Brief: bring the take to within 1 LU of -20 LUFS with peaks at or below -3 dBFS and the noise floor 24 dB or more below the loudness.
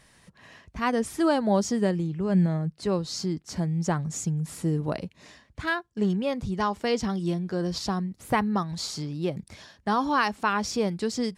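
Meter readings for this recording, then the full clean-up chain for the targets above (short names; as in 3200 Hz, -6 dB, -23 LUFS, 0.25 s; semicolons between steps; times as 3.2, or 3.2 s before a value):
loudness -27.5 LUFS; peak -12.0 dBFS; loudness target -20.0 LUFS
-> gain +7.5 dB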